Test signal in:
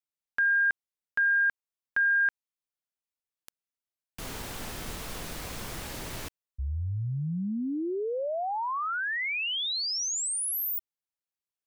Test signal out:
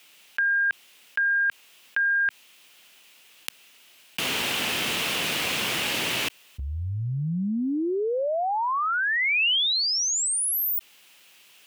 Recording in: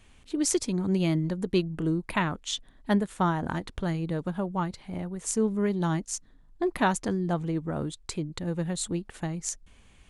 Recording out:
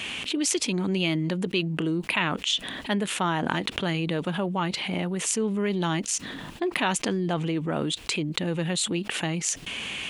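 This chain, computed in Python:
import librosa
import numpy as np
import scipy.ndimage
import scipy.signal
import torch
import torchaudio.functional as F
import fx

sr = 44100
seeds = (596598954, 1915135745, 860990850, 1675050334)

y = scipy.signal.sosfilt(scipy.signal.butter(2, 180.0, 'highpass', fs=sr, output='sos'), x)
y = fx.peak_eq(y, sr, hz=2800.0, db=13.0, octaves=0.9)
y = fx.env_flatten(y, sr, amount_pct=70)
y = y * librosa.db_to_amplitude(-4.0)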